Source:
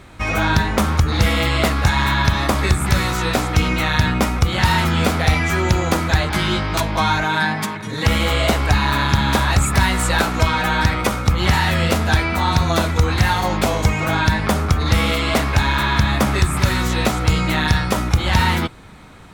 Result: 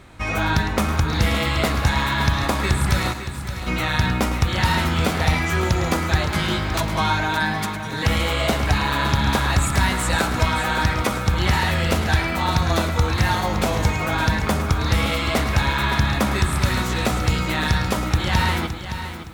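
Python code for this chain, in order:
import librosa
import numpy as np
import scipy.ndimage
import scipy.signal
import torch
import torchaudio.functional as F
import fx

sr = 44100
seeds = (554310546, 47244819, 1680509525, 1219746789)

y = fx.tone_stack(x, sr, knobs='6-0-2', at=(3.12, 3.66), fade=0.02)
y = y + 10.0 ** (-12.0 / 20.0) * np.pad(y, (int(107 * sr / 1000.0), 0))[:len(y)]
y = fx.echo_crushed(y, sr, ms=566, feedback_pct=35, bits=7, wet_db=-10)
y = y * librosa.db_to_amplitude(-3.5)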